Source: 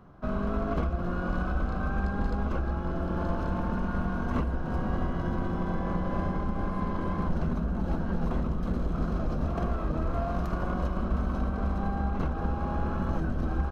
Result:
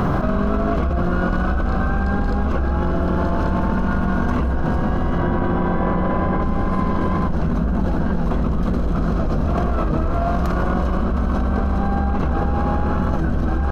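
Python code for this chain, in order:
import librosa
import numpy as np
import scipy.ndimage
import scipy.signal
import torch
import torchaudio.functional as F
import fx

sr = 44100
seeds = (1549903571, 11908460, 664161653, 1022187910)

y = fx.bass_treble(x, sr, bass_db=-3, treble_db=-12, at=(5.18, 6.42))
y = fx.env_flatten(y, sr, amount_pct=100)
y = F.gain(torch.from_numpy(y), 4.0).numpy()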